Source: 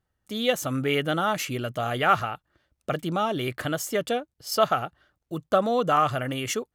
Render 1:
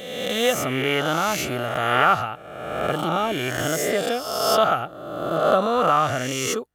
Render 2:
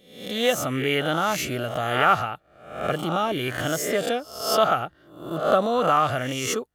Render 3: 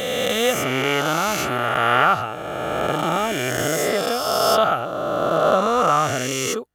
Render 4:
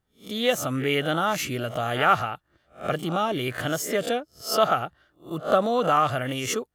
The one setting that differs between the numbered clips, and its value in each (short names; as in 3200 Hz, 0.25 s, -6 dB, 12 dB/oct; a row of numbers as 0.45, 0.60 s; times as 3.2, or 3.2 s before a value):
spectral swells, rising 60 dB in: 1.4, 0.64, 2.94, 0.3 s